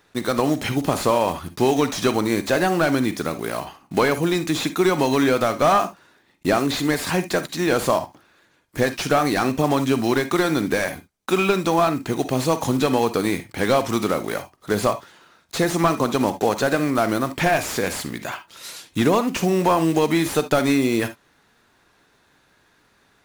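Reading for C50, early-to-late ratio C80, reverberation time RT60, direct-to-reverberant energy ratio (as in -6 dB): 13.0 dB, 35.5 dB, not exponential, 11.5 dB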